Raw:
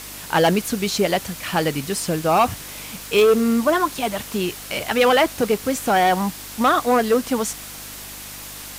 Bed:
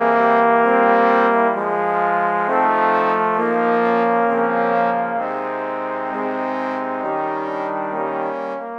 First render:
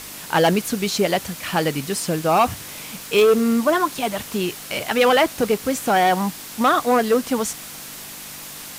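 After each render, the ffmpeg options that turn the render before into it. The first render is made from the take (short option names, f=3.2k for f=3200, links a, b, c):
-af "bandreject=f=50:t=h:w=4,bandreject=f=100:t=h:w=4"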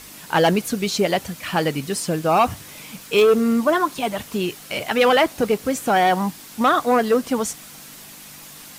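-af "afftdn=nr=6:nf=-36"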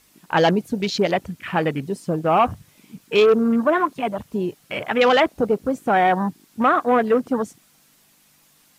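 -af "afwtdn=0.0316"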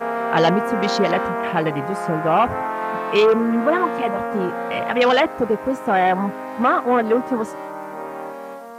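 -filter_complex "[1:a]volume=-8.5dB[a];[0:a][a]amix=inputs=2:normalize=0"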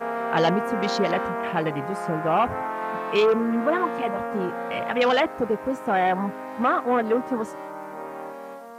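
-af "volume=-4.5dB"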